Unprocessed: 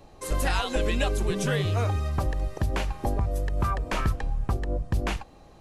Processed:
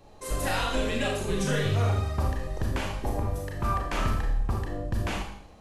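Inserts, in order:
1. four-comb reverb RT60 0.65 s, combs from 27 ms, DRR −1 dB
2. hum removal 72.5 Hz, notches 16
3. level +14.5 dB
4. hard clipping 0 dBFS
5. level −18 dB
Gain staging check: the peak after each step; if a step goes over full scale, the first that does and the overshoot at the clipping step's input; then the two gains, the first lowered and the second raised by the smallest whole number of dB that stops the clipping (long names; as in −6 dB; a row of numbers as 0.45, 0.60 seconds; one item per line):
−9.5, −11.0, +3.5, 0.0, −18.0 dBFS
step 3, 3.5 dB
step 3 +10.5 dB, step 5 −14 dB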